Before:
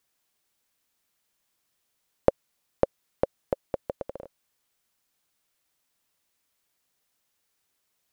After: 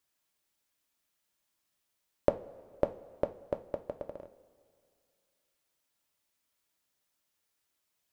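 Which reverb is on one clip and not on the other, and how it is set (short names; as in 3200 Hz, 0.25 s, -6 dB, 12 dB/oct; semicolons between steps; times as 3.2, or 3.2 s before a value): two-slope reverb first 0.29 s, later 2.4 s, from -18 dB, DRR 6.5 dB; gain -5.5 dB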